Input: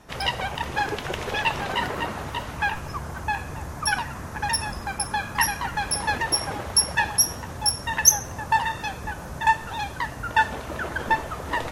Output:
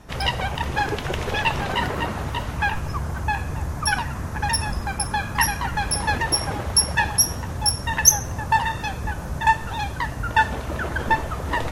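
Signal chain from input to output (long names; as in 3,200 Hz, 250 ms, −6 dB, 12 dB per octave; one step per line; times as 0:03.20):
low-shelf EQ 170 Hz +8.5 dB
level +1.5 dB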